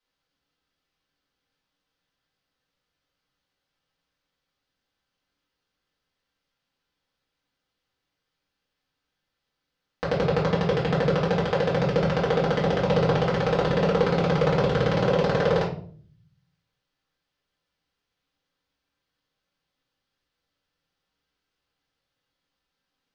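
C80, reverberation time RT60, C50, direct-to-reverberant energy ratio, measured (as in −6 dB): 12.5 dB, 0.50 s, 7.0 dB, −7.5 dB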